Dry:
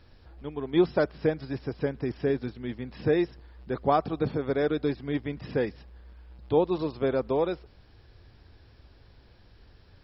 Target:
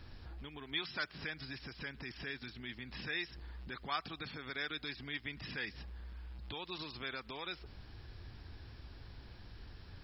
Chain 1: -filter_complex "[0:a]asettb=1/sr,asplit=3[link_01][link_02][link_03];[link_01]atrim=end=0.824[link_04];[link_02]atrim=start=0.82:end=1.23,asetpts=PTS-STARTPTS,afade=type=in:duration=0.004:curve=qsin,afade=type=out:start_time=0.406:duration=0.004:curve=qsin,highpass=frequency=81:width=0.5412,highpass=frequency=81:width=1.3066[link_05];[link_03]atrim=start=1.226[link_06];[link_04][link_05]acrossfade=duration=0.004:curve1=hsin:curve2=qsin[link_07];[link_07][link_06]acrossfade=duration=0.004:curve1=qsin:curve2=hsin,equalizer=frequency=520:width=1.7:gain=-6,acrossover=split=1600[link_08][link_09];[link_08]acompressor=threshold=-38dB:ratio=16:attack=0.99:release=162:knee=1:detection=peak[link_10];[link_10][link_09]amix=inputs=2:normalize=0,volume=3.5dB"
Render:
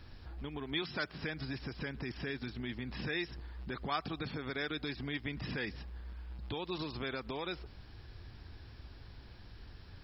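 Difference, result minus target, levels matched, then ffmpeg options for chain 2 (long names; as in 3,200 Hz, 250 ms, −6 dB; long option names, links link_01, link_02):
downward compressor: peak gain reduction −8.5 dB
-filter_complex "[0:a]asettb=1/sr,asplit=3[link_01][link_02][link_03];[link_01]atrim=end=0.824[link_04];[link_02]atrim=start=0.82:end=1.23,asetpts=PTS-STARTPTS,afade=type=in:duration=0.004:curve=qsin,afade=type=out:start_time=0.406:duration=0.004:curve=qsin,highpass=frequency=81:width=0.5412,highpass=frequency=81:width=1.3066[link_05];[link_03]atrim=start=1.226[link_06];[link_04][link_05]acrossfade=duration=0.004:curve1=hsin:curve2=qsin[link_07];[link_07][link_06]acrossfade=duration=0.004:curve1=qsin:curve2=hsin,equalizer=frequency=520:width=1.7:gain=-6,acrossover=split=1600[link_08][link_09];[link_08]acompressor=threshold=-47dB:ratio=16:attack=0.99:release=162:knee=1:detection=peak[link_10];[link_10][link_09]amix=inputs=2:normalize=0,volume=3.5dB"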